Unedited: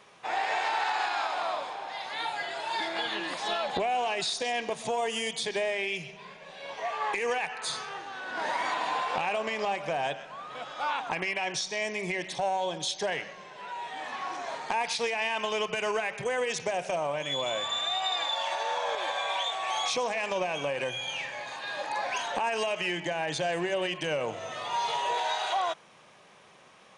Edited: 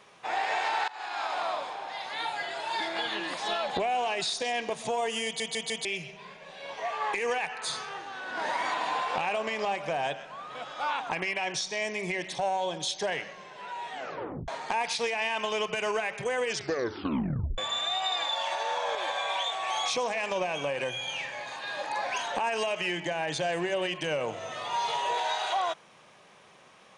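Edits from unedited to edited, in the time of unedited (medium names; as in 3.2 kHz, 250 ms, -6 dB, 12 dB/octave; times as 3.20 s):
0.88–1.33 s: fade in, from -23 dB
5.25 s: stutter in place 0.15 s, 4 plays
13.94 s: tape stop 0.54 s
16.46 s: tape stop 1.12 s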